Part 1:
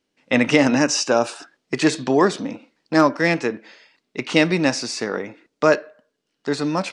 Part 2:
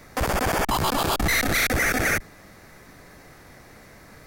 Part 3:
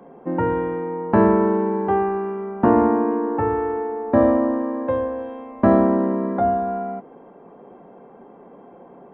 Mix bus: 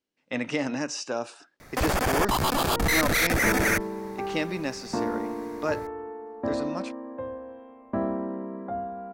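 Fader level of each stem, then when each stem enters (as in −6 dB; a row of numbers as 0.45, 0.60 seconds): −12.5, −1.5, −13.0 decibels; 0.00, 1.60, 2.30 seconds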